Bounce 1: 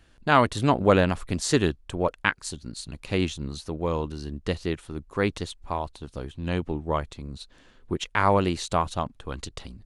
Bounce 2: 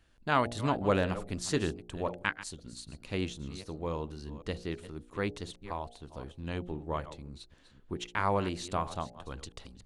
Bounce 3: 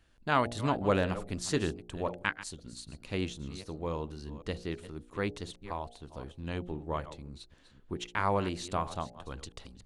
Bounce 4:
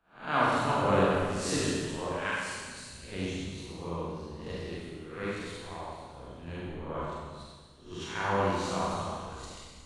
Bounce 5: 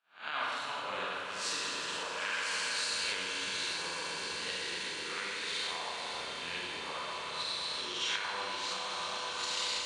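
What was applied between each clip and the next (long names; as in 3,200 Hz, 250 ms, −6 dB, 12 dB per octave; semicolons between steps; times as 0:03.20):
delay that plays each chunk backwards 260 ms, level −14 dB; hum removal 59.13 Hz, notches 14; level −8 dB
no processing that can be heard
peak hold with a rise ahead of every peak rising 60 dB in 0.53 s; four-comb reverb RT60 2 s, combs from 32 ms, DRR −6.5 dB; multiband upward and downward expander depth 40%; level −7.5 dB
camcorder AGC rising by 32 dB per second; resonant band-pass 3,500 Hz, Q 0.99; echo that builds up and dies away 126 ms, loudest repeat 8, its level −14 dB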